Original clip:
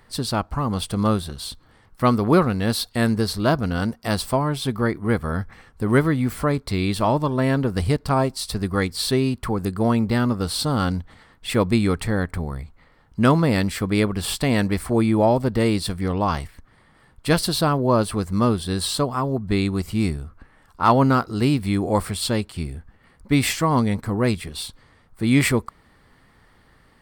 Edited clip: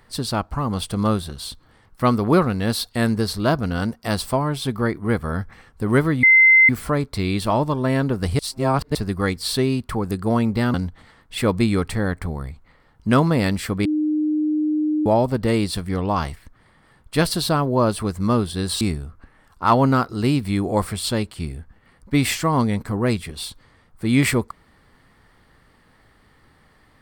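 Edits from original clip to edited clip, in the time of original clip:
0:06.23: insert tone 2,070 Hz −8.5 dBFS 0.46 s
0:07.93–0:08.49: reverse
0:10.28–0:10.86: remove
0:13.97–0:15.18: beep over 305 Hz −17.5 dBFS
0:18.93–0:19.99: remove

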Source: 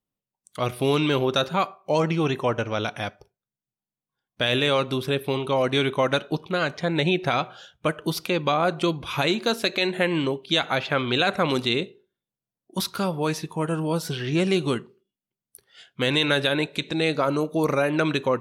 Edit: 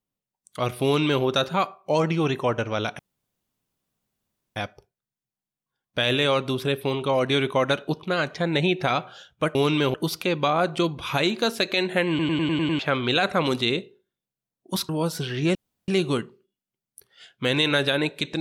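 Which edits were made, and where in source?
0:00.84–0:01.23: duplicate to 0:07.98
0:02.99: splice in room tone 1.57 s
0:10.13: stutter in place 0.10 s, 7 plays
0:12.93–0:13.79: remove
0:14.45: splice in room tone 0.33 s

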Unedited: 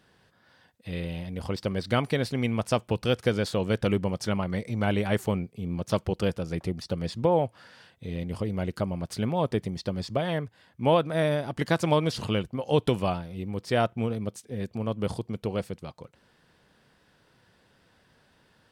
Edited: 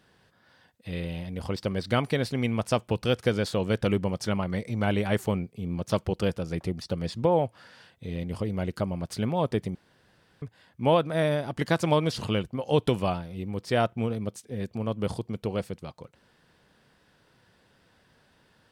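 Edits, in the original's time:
0:09.75–0:10.42: fill with room tone

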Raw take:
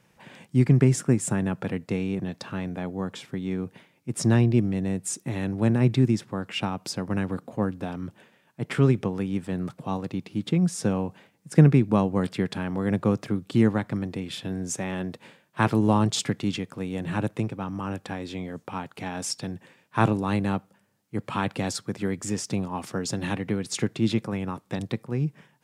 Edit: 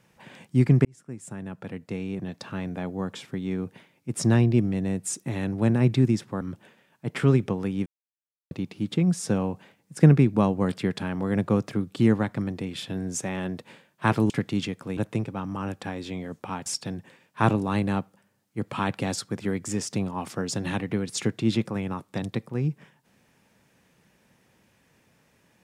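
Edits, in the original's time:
0:00.85–0:02.77: fade in
0:06.41–0:07.96: remove
0:09.41–0:10.06: silence
0:15.85–0:16.21: remove
0:16.88–0:17.21: remove
0:18.90–0:19.23: remove

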